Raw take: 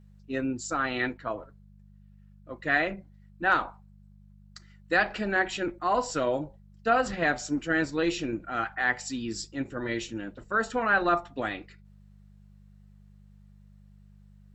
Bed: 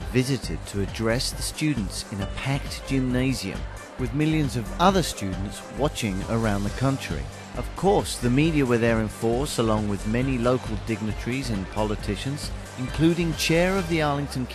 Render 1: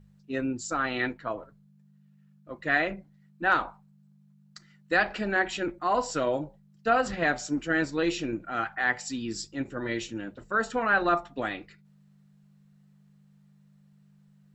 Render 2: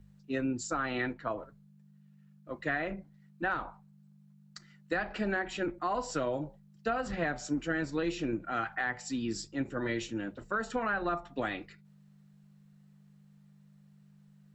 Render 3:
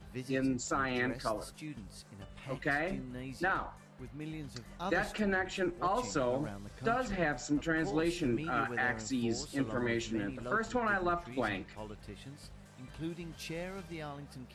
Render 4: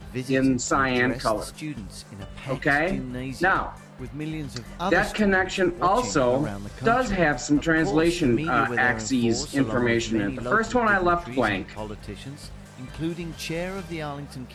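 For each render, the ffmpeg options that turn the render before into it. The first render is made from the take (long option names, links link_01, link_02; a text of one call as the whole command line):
ffmpeg -i in.wav -af "bandreject=frequency=50:width_type=h:width=4,bandreject=frequency=100:width_type=h:width=4" out.wav
ffmpeg -i in.wav -filter_complex "[0:a]acrossover=split=2100[link_01][link_02];[link_02]alimiter=level_in=6.5dB:limit=-24dB:level=0:latency=1:release=465,volume=-6.5dB[link_03];[link_01][link_03]amix=inputs=2:normalize=0,acrossover=split=170[link_04][link_05];[link_05]acompressor=threshold=-29dB:ratio=6[link_06];[link_04][link_06]amix=inputs=2:normalize=0" out.wav
ffmpeg -i in.wav -i bed.wav -filter_complex "[1:a]volume=-20dB[link_01];[0:a][link_01]amix=inputs=2:normalize=0" out.wav
ffmpeg -i in.wav -af "volume=11dB" out.wav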